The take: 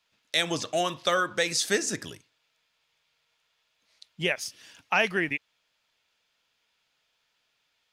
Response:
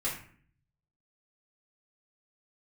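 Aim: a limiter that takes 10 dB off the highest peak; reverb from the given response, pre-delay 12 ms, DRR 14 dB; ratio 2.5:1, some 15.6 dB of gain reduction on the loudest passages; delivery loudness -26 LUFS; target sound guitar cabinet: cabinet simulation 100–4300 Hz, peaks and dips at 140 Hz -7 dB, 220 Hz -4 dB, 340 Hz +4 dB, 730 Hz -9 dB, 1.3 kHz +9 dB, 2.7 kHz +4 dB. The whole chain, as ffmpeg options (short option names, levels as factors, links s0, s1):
-filter_complex "[0:a]acompressor=threshold=0.00562:ratio=2.5,alimiter=level_in=2.82:limit=0.0631:level=0:latency=1,volume=0.355,asplit=2[s0][s1];[1:a]atrim=start_sample=2205,adelay=12[s2];[s1][s2]afir=irnorm=-1:irlink=0,volume=0.106[s3];[s0][s3]amix=inputs=2:normalize=0,highpass=100,equalizer=f=140:t=q:w=4:g=-7,equalizer=f=220:t=q:w=4:g=-4,equalizer=f=340:t=q:w=4:g=4,equalizer=f=730:t=q:w=4:g=-9,equalizer=f=1300:t=q:w=4:g=9,equalizer=f=2700:t=q:w=4:g=4,lowpass=f=4300:w=0.5412,lowpass=f=4300:w=1.3066,volume=8.41"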